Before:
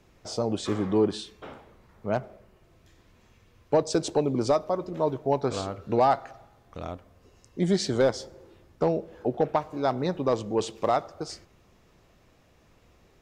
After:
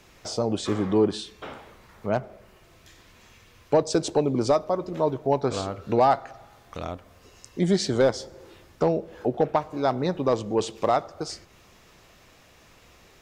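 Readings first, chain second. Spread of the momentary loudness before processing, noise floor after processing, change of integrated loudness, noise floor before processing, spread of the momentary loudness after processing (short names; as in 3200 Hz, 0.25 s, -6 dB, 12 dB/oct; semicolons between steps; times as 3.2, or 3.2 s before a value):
16 LU, -55 dBFS, +2.0 dB, -61 dBFS, 15 LU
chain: mismatched tape noise reduction encoder only; gain +2 dB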